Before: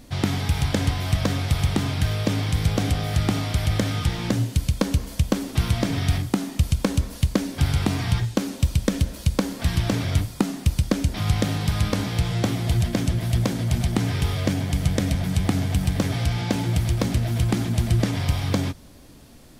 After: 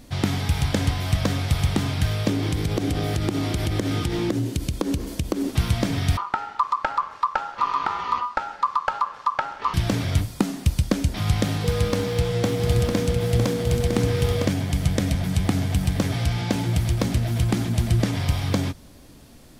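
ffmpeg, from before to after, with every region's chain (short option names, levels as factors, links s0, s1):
-filter_complex "[0:a]asettb=1/sr,asplit=3[s0][s1][s2];[s0]atrim=end=2.294[s3];[s1]atrim=start=2.29:end=5.5,asetpts=PTS-STARTPTS,afade=t=in:d=0.004:c=qsin,afade=t=out:st=3.206:d=0.004:c=qsin,equalizer=f=340:w=2.1:g=14,acompressor=threshold=0.112:ratio=6:attack=3.2:release=140:knee=1:detection=peak[s4];[s2]atrim=start=5.496[s5];[s3][s4]acrossfade=d=0.004:c1=hsin:c2=qsin[s6];[s6][s5]acrossfade=d=0.004:c1=qsin:c2=hsin,asettb=1/sr,asplit=3[s7][s8][s9];[s7]atrim=end=6.174[s10];[s8]atrim=start=6.17:end=9.74,asetpts=PTS-STARTPTS,afade=t=in:d=0.004:c=qsin,afade=t=out:st=3.566:d=0.004:c=qsin,lowpass=2900,aeval=exprs='val(0)*sin(2*PI*1100*n/s)':c=same[s11];[s9]atrim=start=9.736[s12];[s10][s11]acrossfade=d=0.004:c1=hsin:c2=qsin[s13];[s13][s12]acrossfade=d=0.004:c1=qsin:c2=hsin,asettb=1/sr,asplit=3[s14][s15][s16];[s14]atrim=end=11.644[s17];[s15]atrim=start=11.64:end=14.45,asetpts=PTS-STARTPTS,afade=t=in:d=0.004:c=qsin,afade=t=out:st=2.806:d=0.004:c=qsin,aecho=1:1:957:0.562,atrim=end_sample=123921,aeval=exprs='val(0)+0.0631*sin(2*PI*480*n/s)':c=same,aeval=exprs='sgn(val(0))*max(abs(val(0))-0.0112,0)':c=same[s18];[s16]atrim=start=14.446[s19];[s17][s18]acrossfade=d=0.004:c1=hsin:c2=qsin[s20];[s20][s19]acrossfade=d=0.004:c1=qsin:c2=hsin"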